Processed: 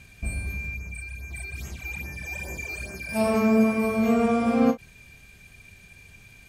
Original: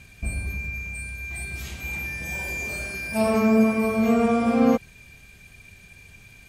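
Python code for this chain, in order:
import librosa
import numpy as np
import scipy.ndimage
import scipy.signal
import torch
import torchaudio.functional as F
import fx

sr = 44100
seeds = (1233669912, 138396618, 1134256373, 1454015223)

y = fx.phaser_stages(x, sr, stages=12, low_hz=170.0, high_hz=4100.0, hz=2.4, feedback_pct=25, at=(0.74, 3.09))
y = fx.end_taper(y, sr, db_per_s=370.0)
y = y * librosa.db_to_amplitude(-1.5)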